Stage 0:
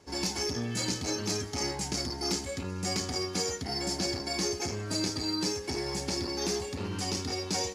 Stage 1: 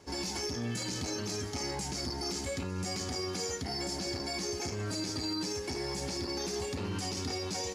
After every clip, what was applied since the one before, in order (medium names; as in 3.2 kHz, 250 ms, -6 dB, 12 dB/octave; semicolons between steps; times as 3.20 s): peak limiter -28.5 dBFS, peak gain reduction 10.5 dB; trim +2 dB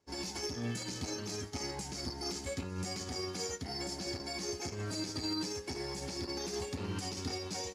upward expansion 2.5:1, over -47 dBFS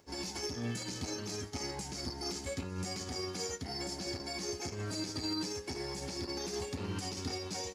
upward compressor, threshold -56 dBFS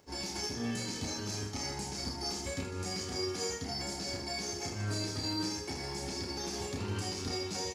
reverse bouncing-ball echo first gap 30 ms, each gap 1.6×, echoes 5